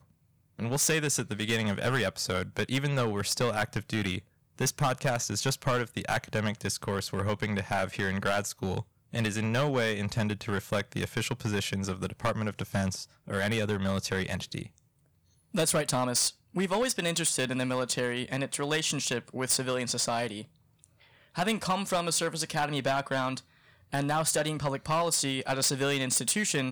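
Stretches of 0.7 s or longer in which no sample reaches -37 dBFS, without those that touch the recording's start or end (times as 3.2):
14.66–15.54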